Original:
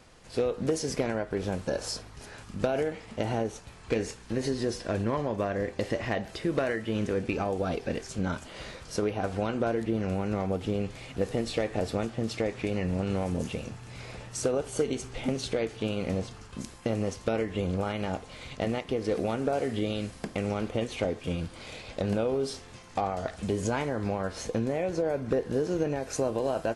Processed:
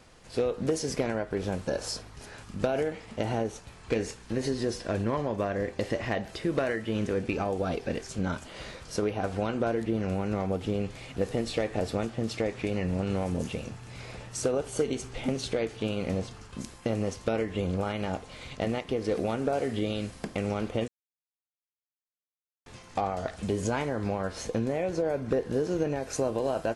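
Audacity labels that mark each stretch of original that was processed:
20.880000	22.660000	mute

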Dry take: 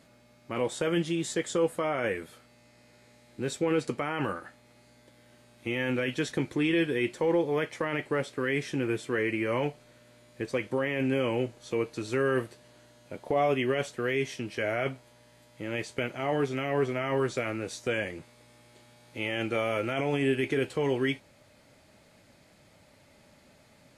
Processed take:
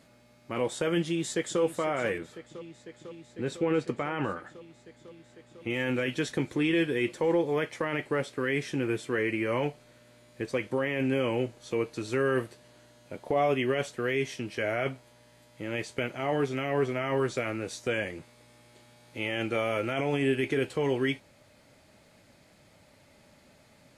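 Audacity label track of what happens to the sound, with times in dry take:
1.010000	1.610000	echo throw 0.5 s, feedback 85%, level -13.5 dB
2.180000	5.700000	LPF 3000 Hz 6 dB/oct

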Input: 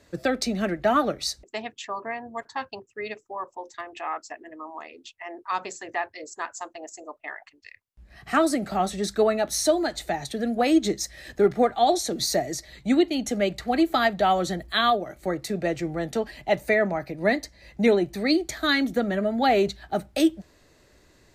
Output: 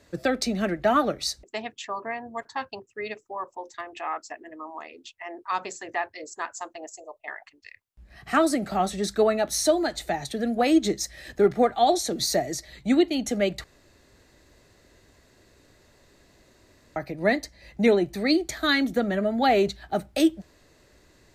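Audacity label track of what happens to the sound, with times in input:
6.880000	7.280000	fixed phaser centre 610 Hz, stages 4
13.640000	16.960000	room tone

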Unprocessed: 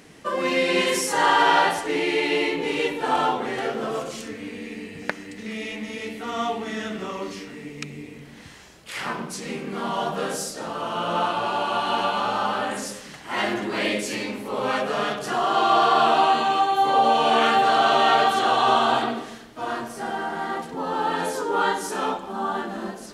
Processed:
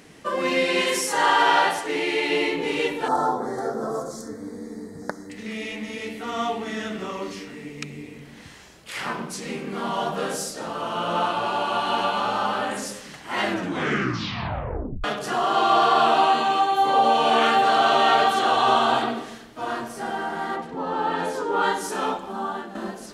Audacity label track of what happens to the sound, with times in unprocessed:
0.650000	2.300000	low shelf 250 Hz -6.5 dB
3.080000	5.300000	Butterworth band-stop 2700 Hz, Q 0.74
13.450000	13.450000	tape stop 1.59 s
15.950000	18.570000	HPF 110 Hz
20.550000	21.620000	LPF 2400 Hz -> 4500 Hz 6 dB/oct
22.290000	22.750000	fade out, to -8 dB

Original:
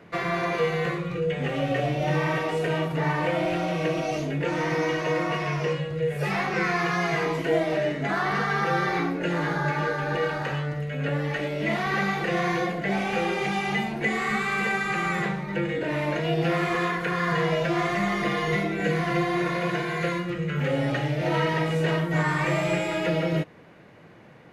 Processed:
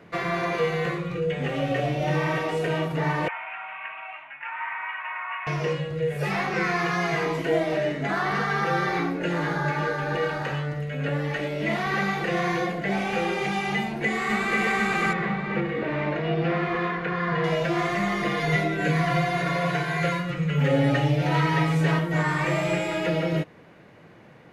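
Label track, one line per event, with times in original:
3.280000	5.470000	elliptic band-pass 870–2600 Hz
13.800000	14.620000	echo throw 0.49 s, feedback 65%, level -2 dB
15.130000	17.440000	air absorption 220 m
18.390000	21.990000	comb 7.1 ms, depth 81%

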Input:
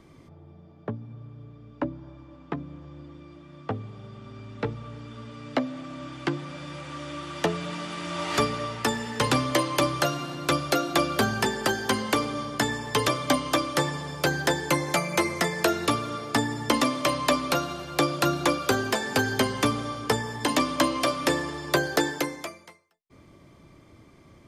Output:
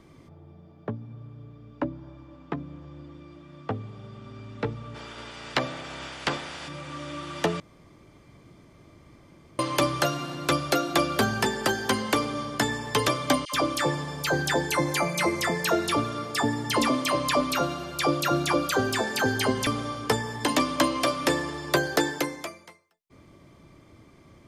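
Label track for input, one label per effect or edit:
4.940000	6.670000	spectral limiter ceiling under each frame's peak by 21 dB
7.600000	9.590000	room tone
13.450000	19.670000	dispersion lows, late by 83 ms, half as late at 1200 Hz

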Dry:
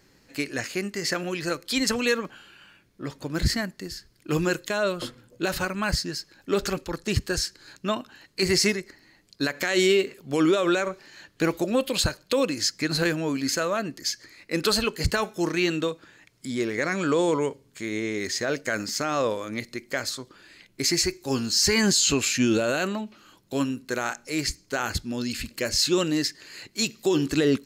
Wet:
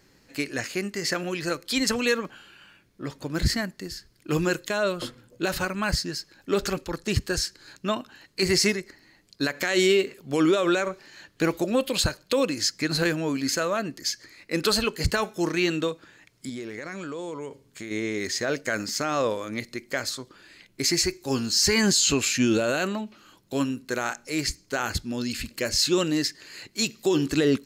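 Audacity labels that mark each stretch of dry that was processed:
16.490000	17.910000	compressor, threshold -32 dBFS

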